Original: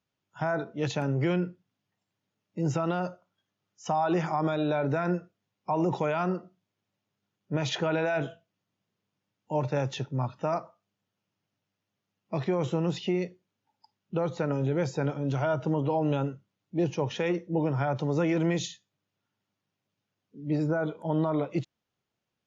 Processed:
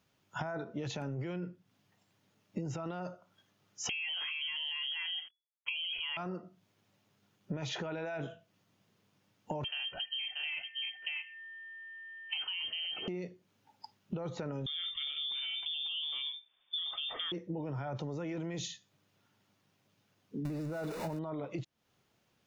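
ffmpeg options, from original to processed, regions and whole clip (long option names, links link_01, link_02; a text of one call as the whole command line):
ffmpeg -i in.wav -filter_complex "[0:a]asettb=1/sr,asplit=3[link_01][link_02][link_03];[link_01]atrim=end=3.894[link_04];[link_02]atrim=start=3.89:end=6.17,asetpts=PTS-STARTPTS,afade=type=in:duration=0.004:curve=qsin,afade=type=out:start_time=2.276:duration=0.004:curve=qsin,acontrast=73,acrusher=bits=8:mix=0:aa=0.5,lowpass=frequency=2900:width_type=q:width=0.5098,lowpass=frequency=2900:width_type=q:width=0.6013,lowpass=frequency=2900:width_type=q:width=0.9,lowpass=frequency=2900:width_type=q:width=2.563,afreqshift=-3400[link_05];[link_03]atrim=start=6.166[link_06];[link_04][link_05]acrossfade=duration=0.004:curve1=hsin:curve2=qsin[link_07];[link_07][link_06]acrossfade=duration=0.004:curve1=qsin:curve2=hsin,asettb=1/sr,asplit=3[link_08][link_09][link_10];[link_08]atrim=end=9.644[link_11];[link_09]atrim=start=9.64:end=13.08,asetpts=PTS-STARTPTS,afade=type=in:duration=0.004:curve=qsin,afade=type=out:start_time=3.436:duration=0.004:curve=qsin,aecho=1:1:632:0.251,atrim=end_sample=151704,aeval=exprs='val(0)+0.00158*sin(2*PI*1500*n/s)':channel_layout=same,lowpass=frequency=2800:width_type=q:width=0.5098,lowpass=frequency=2800:width_type=q:width=0.6013,lowpass=frequency=2800:width_type=q:width=0.9,lowpass=frequency=2800:width_type=q:width=2.563,afreqshift=-3300[link_12];[link_10]atrim=start=13.076[link_13];[link_11][link_12]acrossfade=duration=0.004:curve1=hsin:curve2=qsin[link_14];[link_14][link_13]acrossfade=duration=0.004:curve1=qsin:curve2=hsin,asettb=1/sr,asplit=3[link_15][link_16][link_17];[link_15]atrim=end=14.664[link_18];[link_16]atrim=start=14.66:end=17.32,asetpts=PTS-STARTPTS,afade=type=in:duration=0.004:curve=qsin,afade=type=out:start_time=2.656:duration=0.004:curve=qsin,asplit=2[link_19][link_20];[link_20]adelay=46,volume=-12dB[link_21];[link_19][link_21]amix=inputs=2:normalize=0,atrim=end_sample=117306,lowpass=frequency=3100:width_type=q:width=0.5098,lowpass=frequency=3100:width_type=q:width=0.6013,lowpass=frequency=3100:width_type=q:width=0.9,lowpass=frequency=3100:width_type=q:width=2.563,afreqshift=-3700[link_22];[link_17]atrim=start=17.316[link_23];[link_18][link_22]acrossfade=duration=0.004:curve1=hsin:curve2=qsin[link_24];[link_24][link_23]acrossfade=duration=0.004:curve1=qsin:curve2=hsin,asettb=1/sr,asplit=3[link_25][link_26][link_27];[link_25]atrim=end=20.454[link_28];[link_26]atrim=start=20.45:end=21.19,asetpts=PTS-STARTPTS,afade=type=in:duration=0.004:curve=qsin,afade=type=out:start_time=0.736:duration=0.004:curve=qsin,aeval=exprs='val(0)+0.5*0.0211*sgn(val(0))':channel_layout=same,asuperstop=centerf=3200:order=12:qfactor=8[link_29];[link_27]atrim=start=21.186[link_30];[link_28][link_29]acrossfade=duration=0.004:curve1=hsin:curve2=qsin[link_31];[link_31][link_30]acrossfade=duration=0.004:curve1=qsin:curve2=hsin,alimiter=level_in=1.5dB:limit=-24dB:level=0:latency=1:release=12,volume=-1.5dB,acompressor=threshold=-46dB:ratio=12,volume=10.5dB" out.wav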